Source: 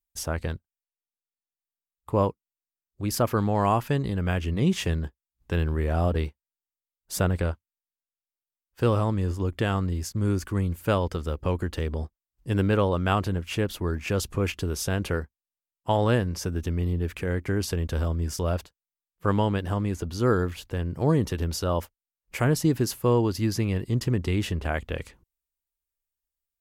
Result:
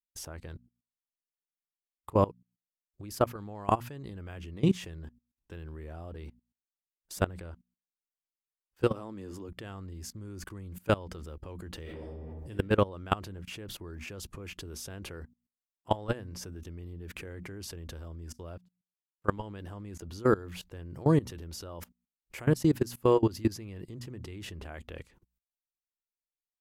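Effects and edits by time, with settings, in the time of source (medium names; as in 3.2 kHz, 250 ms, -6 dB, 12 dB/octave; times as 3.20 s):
8.89–9.49 s: resonant low shelf 170 Hz -8.5 dB, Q 1.5
11.81–12.50 s: reverb throw, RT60 1 s, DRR -5.5 dB
18.32–19.37 s: upward expansion 2.5:1, over -38 dBFS
whole clip: peaking EQ 340 Hz +3.5 dB 0.27 oct; hum notches 60/120/180/240 Hz; level held to a coarse grid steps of 21 dB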